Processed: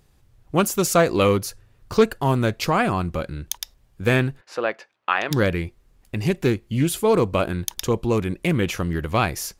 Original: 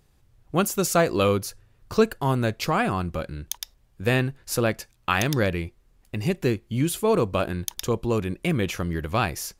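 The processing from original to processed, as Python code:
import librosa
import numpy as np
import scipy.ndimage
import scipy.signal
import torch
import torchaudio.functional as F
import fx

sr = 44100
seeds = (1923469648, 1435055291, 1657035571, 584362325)

y = fx.bandpass_edges(x, sr, low_hz=500.0, high_hz=2500.0, at=(4.4, 5.3), fade=0.02)
y = fx.doppler_dist(y, sr, depth_ms=0.14)
y = F.gain(torch.from_numpy(y), 3.0).numpy()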